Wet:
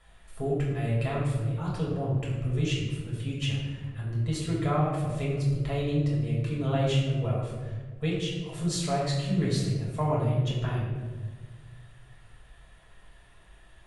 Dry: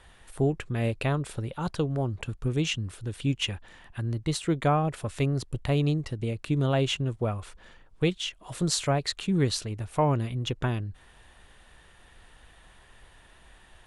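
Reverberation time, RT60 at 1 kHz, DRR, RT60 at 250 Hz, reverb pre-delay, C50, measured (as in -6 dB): 1.4 s, 1.2 s, -6.0 dB, 2.0 s, 4 ms, 1.0 dB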